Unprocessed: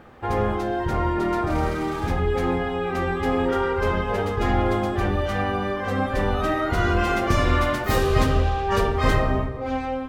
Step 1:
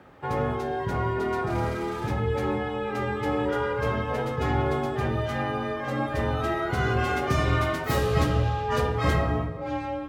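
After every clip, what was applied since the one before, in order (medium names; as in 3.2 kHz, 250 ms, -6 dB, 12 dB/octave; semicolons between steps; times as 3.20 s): frequency shift +35 Hz; trim -4 dB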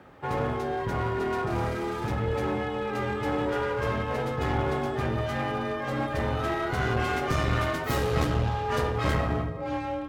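one-sided clip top -27.5 dBFS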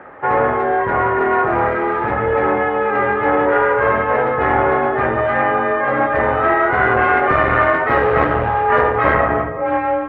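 FFT filter 150 Hz 0 dB, 540 Hz +13 dB, 1.9 kHz +15 dB, 7.1 kHz -29 dB, 11 kHz -22 dB; trim +1.5 dB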